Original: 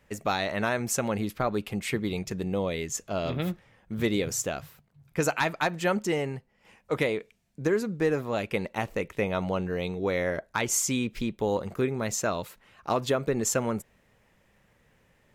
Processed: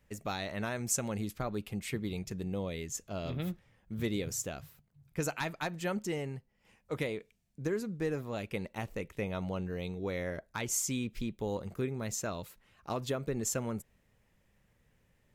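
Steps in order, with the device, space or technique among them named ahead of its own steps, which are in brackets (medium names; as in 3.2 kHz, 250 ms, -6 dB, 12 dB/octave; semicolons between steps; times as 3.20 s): 0.76–1.44 s: peaking EQ 7.3 kHz +5.5 dB 0.96 oct; smiley-face EQ (bass shelf 130 Hz +6 dB; peaking EQ 990 Hz -3.5 dB 2.9 oct; treble shelf 8.8 kHz +3.5 dB); trim -7 dB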